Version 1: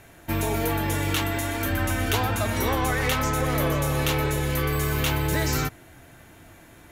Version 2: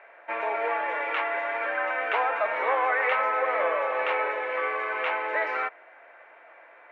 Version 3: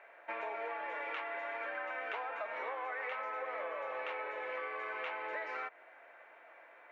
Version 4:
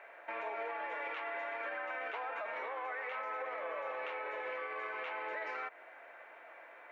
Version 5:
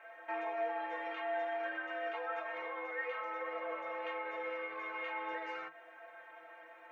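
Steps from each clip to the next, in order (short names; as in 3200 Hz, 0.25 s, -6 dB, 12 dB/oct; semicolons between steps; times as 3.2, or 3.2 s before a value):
elliptic band-pass 520–2300 Hz, stop band 70 dB; gain +3.5 dB
compressor, threshold -31 dBFS, peak gain reduction 10.5 dB; tone controls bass +5 dB, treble +8 dB; gain -6.5 dB
limiter -35.5 dBFS, peak gain reduction 10.5 dB; gain +3.5 dB
metallic resonator 160 Hz, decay 0.21 s, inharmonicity 0.008; gain +9.5 dB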